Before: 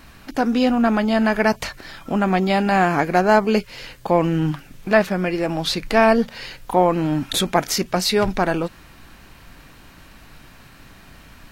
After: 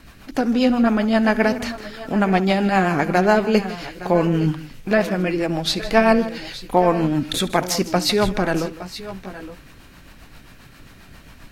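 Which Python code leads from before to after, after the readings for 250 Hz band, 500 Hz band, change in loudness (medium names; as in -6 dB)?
+1.0 dB, 0.0 dB, 0.0 dB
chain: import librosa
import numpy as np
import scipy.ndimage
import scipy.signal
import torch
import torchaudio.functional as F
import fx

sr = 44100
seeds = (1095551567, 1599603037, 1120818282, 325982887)

y = fx.rotary(x, sr, hz=7.5)
y = fx.echo_multitap(y, sr, ms=(68, 156, 864, 880), db=(-19.5, -16.0, -16.5, -17.0))
y = F.gain(torch.from_numpy(y), 2.0).numpy()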